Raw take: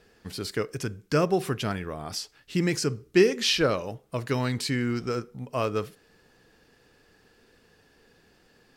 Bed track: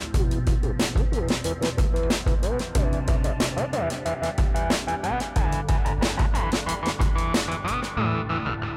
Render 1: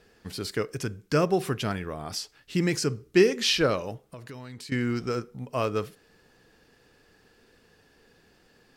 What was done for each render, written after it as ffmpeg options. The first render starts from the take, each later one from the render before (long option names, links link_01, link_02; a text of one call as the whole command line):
ffmpeg -i in.wav -filter_complex "[0:a]asettb=1/sr,asplit=3[link_01][link_02][link_03];[link_01]atrim=end=4.084[link_04];[link_02]atrim=start=4.08:end=4.72,asetpts=PTS-STARTPTS,afade=type=in:duration=0.004:curve=qsin,afade=type=out:start_time=0.636:duration=0.004:curve=qsin,acompressor=threshold=-41dB:ratio=4:attack=3.2:release=140:knee=1:detection=peak[link_05];[link_03]atrim=start=4.716[link_06];[link_04][link_05]acrossfade=duration=0.004:curve1=hsin:curve2=qsin[link_07];[link_07][link_06]acrossfade=duration=0.004:curve1=qsin:curve2=hsin" out.wav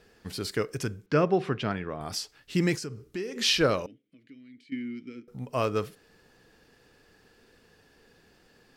ffmpeg -i in.wav -filter_complex "[0:a]asettb=1/sr,asplit=3[link_01][link_02][link_03];[link_01]atrim=end=1.064[link_04];[link_02]atrim=start=1.06:end=2.01,asetpts=PTS-STARTPTS,afade=type=in:duration=0.004:curve=qsin,afade=type=out:start_time=0.946:duration=0.004:curve=qsin,highpass=100,lowpass=3300[link_05];[link_03]atrim=start=2.006[link_06];[link_04][link_05]acrossfade=duration=0.004:curve1=hsin:curve2=qsin[link_07];[link_07][link_06]acrossfade=duration=0.004:curve1=qsin:curve2=hsin,asplit=3[link_08][link_09][link_10];[link_08]afade=type=out:start_time=2.75:duration=0.02[link_11];[link_09]acompressor=threshold=-36dB:ratio=3:attack=3.2:release=140:knee=1:detection=peak,afade=type=in:start_time=2.75:duration=0.02,afade=type=out:start_time=3.35:duration=0.02[link_12];[link_10]afade=type=in:start_time=3.35:duration=0.02[link_13];[link_11][link_12][link_13]amix=inputs=3:normalize=0,asettb=1/sr,asplit=3[link_14][link_15][link_16];[link_14]atrim=end=3.864[link_17];[link_15]atrim=start=3.86:end=5.28,asetpts=PTS-STARTPTS,afade=type=in:duration=0.004:curve=qsin,afade=type=out:start_time=1.416:duration=0.004:curve=qsin,asplit=3[link_18][link_19][link_20];[link_18]bandpass=frequency=270:width_type=q:width=8,volume=0dB[link_21];[link_19]bandpass=frequency=2290:width_type=q:width=8,volume=-6dB[link_22];[link_20]bandpass=frequency=3010:width_type=q:width=8,volume=-9dB[link_23];[link_21][link_22][link_23]amix=inputs=3:normalize=0[link_24];[link_16]atrim=start=5.276[link_25];[link_17][link_24]acrossfade=duration=0.004:curve1=hsin:curve2=qsin[link_26];[link_26][link_25]acrossfade=duration=0.004:curve1=qsin:curve2=hsin" out.wav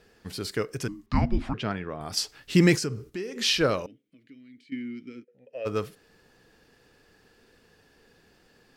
ffmpeg -i in.wav -filter_complex "[0:a]asettb=1/sr,asplit=3[link_01][link_02][link_03];[link_01]atrim=end=0.884[link_04];[link_02]atrim=start=0.88:end=1.54,asetpts=PTS-STARTPTS,afade=type=in:duration=0.004:curve=qsin,afade=type=out:start_time=0.656:duration=0.004:curve=qsin,afreqshift=-410[link_05];[link_03]atrim=start=1.536[link_06];[link_04][link_05]acrossfade=duration=0.004:curve1=hsin:curve2=qsin[link_07];[link_07][link_06]acrossfade=duration=0.004:curve1=qsin:curve2=hsin,asettb=1/sr,asplit=3[link_08][link_09][link_10];[link_08]atrim=end=2.174[link_11];[link_09]atrim=start=2.17:end=3.1,asetpts=PTS-STARTPTS,afade=type=in:duration=0.004:curve=qsin,afade=type=out:start_time=0.926:duration=0.004:curve=qsin,acontrast=74[link_12];[link_10]atrim=start=3.096[link_13];[link_11][link_12]acrossfade=duration=0.004:curve1=hsin:curve2=qsin[link_14];[link_14][link_13]acrossfade=duration=0.004:curve1=qsin:curve2=hsin,asplit=3[link_15][link_16][link_17];[link_15]afade=type=out:start_time=5.23:duration=0.02[link_18];[link_16]asplit=3[link_19][link_20][link_21];[link_19]bandpass=frequency=530:width_type=q:width=8,volume=0dB[link_22];[link_20]bandpass=frequency=1840:width_type=q:width=8,volume=-6dB[link_23];[link_21]bandpass=frequency=2480:width_type=q:width=8,volume=-9dB[link_24];[link_22][link_23][link_24]amix=inputs=3:normalize=0,afade=type=in:start_time=5.23:duration=0.02,afade=type=out:start_time=5.65:duration=0.02[link_25];[link_17]afade=type=in:start_time=5.65:duration=0.02[link_26];[link_18][link_25][link_26]amix=inputs=3:normalize=0" out.wav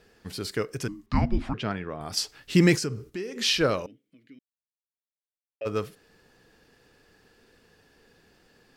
ffmpeg -i in.wav -filter_complex "[0:a]asplit=3[link_01][link_02][link_03];[link_01]atrim=end=4.39,asetpts=PTS-STARTPTS,afade=type=out:start_time=4.386:duration=0.004:curve=hsin[link_04];[link_02]atrim=start=4.39:end=5.61,asetpts=PTS-STARTPTS,volume=0[link_05];[link_03]atrim=start=5.61,asetpts=PTS-STARTPTS,afade=type=in:duration=0.004:curve=hsin[link_06];[link_04][link_05][link_06]concat=n=3:v=0:a=1" out.wav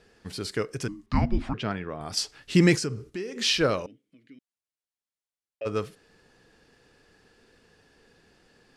ffmpeg -i in.wav -af "lowpass=frequency=11000:width=0.5412,lowpass=frequency=11000:width=1.3066" out.wav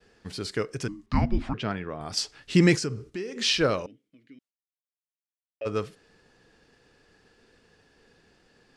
ffmpeg -i in.wav -af "lowpass=9500,agate=range=-33dB:threshold=-59dB:ratio=3:detection=peak" out.wav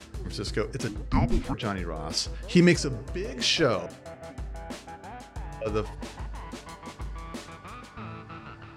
ffmpeg -i in.wav -i bed.wav -filter_complex "[1:a]volume=-16dB[link_01];[0:a][link_01]amix=inputs=2:normalize=0" out.wav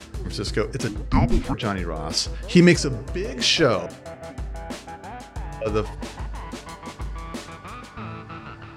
ffmpeg -i in.wav -af "volume=5dB" out.wav